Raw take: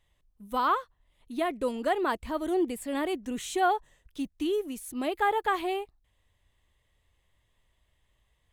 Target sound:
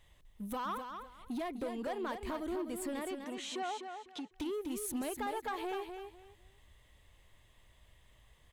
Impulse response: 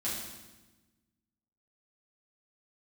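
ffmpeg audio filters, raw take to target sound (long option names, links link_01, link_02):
-filter_complex "[0:a]acompressor=threshold=-41dB:ratio=6,asoftclip=type=tanh:threshold=-40dB,asettb=1/sr,asplit=3[link_01][link_02][link_03];[link_01]atrim=end=2.994[link_04];[link_02]atrim=start=2.99:end=4.32,asetpts=PTS-STARTPTS,afade=type=in:duration=0.004:curve=qsin,afade=type=out:start_time=1.326:duration=0.004:curve=qsin,highpass=310,lowpass=5100[link_05];[link_03]atrim=start=4.316[link_06];[link_04][link_05]acrossfade=duration=0.004:curve1=hsin:curve2=qsin[link_07];[link_07][link_06]acrossfade=duration=0.004:curve1=qsin:curve2=hsin,aecho=1:1:251|502|753:0.447|0.103|0.0236,volume=7dB"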